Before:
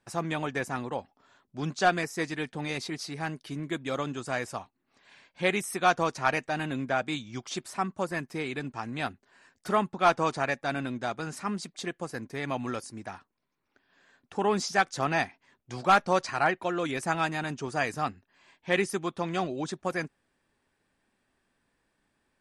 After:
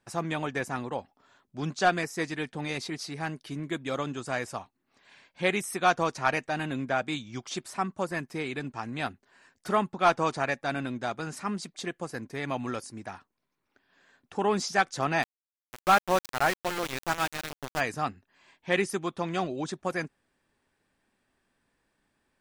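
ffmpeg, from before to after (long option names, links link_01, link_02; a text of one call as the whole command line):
ffmpeg -i in.wav -filter_complex "[0:a]asplit=3[link_01][link_02][link_03];[link_01]afade=type=out:start_time=15.22:duration=0.02[link_04];[link_02]aeval=exprs='val(0)*gte(abs(val(0)),0.0422)':channel_layout=same,afade=type=in:start_time=15.22:duration=0.02,afade=type=out:start_time=17.79:duration=0.02[link_05];[link_03]afade=type=in:start_time=17.79:duration=0.02[link_06];[link_04][link_05][link_06]amix=inputs=3:normalize=0" out.wav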